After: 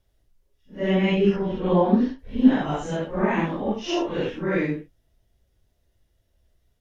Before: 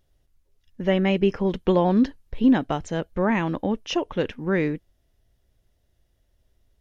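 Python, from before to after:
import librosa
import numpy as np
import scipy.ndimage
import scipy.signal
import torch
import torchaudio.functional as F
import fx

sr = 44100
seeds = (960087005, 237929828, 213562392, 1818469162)

y = fx.phase_scramble(x, sr, seeds[0], window_ms=200)
y = fx.lowpass(y, sr, hz=2500.0, slope=6, at=(1.36, 2.19))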